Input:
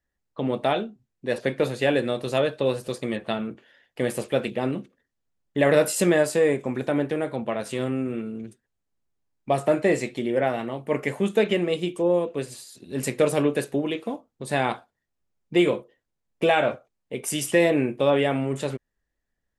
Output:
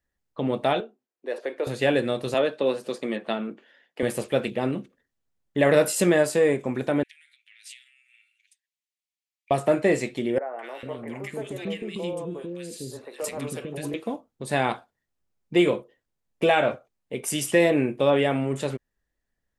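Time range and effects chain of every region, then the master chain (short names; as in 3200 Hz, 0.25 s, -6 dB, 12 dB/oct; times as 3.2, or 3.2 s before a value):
0.8–1.67 HPF 350 Hz 24 dB/oct + compressor 1.5:1, threshold -28 dBFS + high shelf 2100 Hz -9 dB
2.34–4.03 HPF 190 Hz 24 dB/oct + high shelf 8300 Hz -10 dB
7.03–9.51 high shelf 10000 Hz -8 dB + compressor 5:1, threshold -34 dBFS + steep high-pass 2000 Hz 48 dB/oct
10.38–13.94 compressor 3:1, threshold -27 dBFS + three bands offset in time mids, highs, lows 0.21/0.45 s, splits 400/1500 Hz
whole clip: dry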